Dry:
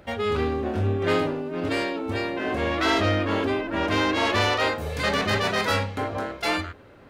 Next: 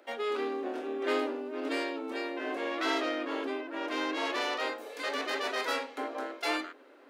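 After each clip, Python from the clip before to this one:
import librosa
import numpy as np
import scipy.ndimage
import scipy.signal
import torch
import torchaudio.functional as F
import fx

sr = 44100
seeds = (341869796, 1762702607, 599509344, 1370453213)

y = scipy.signal.sosfilt(scipy.signal.butter(16, 250.0, 'highpass', fs=sr, output='sos'), x)
y = fx.rider(y, sr, range_db=4, speed_s=2.0)
y = y * 10.0 ** (-8.5 / 20.0)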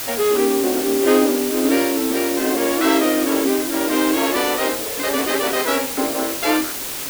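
y = fx.peak_eq(x, sr, hz=150.0, db=14.0, octaves=2.9)
y = fx.quant_dither(y, sr, seeds[0], bits=6, dither='triangular')
y = y * 10.0 ** (8.5 / 20.0)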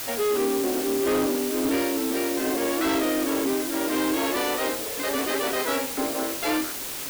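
y = np.clip(x, -10.0 ** (-14.0 / 20.0), 10.0 ** (-14.0 / 20.0))
y = y * 10.0 ** (-5.5 / 20.0)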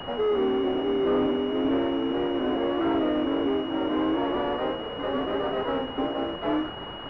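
y = fx.vibrato(x, sr, rate_hz=1.5, depth_cents=41.0)
y = fx.pwm(y, sr, carrier_hz=2900.0)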